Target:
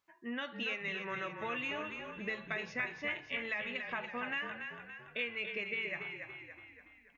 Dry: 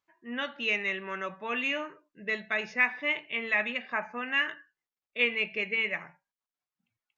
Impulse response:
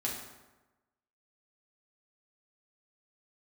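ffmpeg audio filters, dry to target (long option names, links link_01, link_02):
-filter_complex "[0:a]acompressor=threshold=-41dB:ratio=4,asplit=2[link_01][link_02];[link_02]asplit=6[link_03][link_04][link_05][link_06][link_07][link_08];[link_03]adelay=284,afreqshift=-35,volume=-6.5dB[link_09];[link_04]adelay=568,afreqshift=-70,volume=-12.2dB[link_10];[link_05]adelay=852,afreqshift=-105,volume=-17.9dB[link_11];[link_06]adelay=1136,afreqshift=-140,volume=-23.5dB[link_12];[link_07]adelay=1420,afreqshift=-175,volume=-29.2dB[link_13];[link_08]adelay=1704,afreqshift=-210,volume=-34.9dB[link_14];[link_09][link_10][link_11][link_12][link_13][link_14]amix=inputs=6:normalize=0[link_15];[link_01][link_15]amix=inputs=2:normalize=0,volume=3dB"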